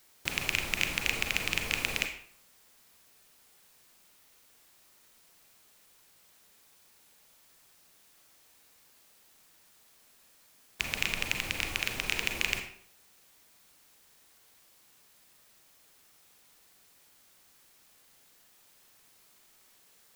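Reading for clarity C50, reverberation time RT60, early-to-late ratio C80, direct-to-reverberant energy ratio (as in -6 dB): 7.5 dB, 0.60 s, 11.0 dB, 5.0 dB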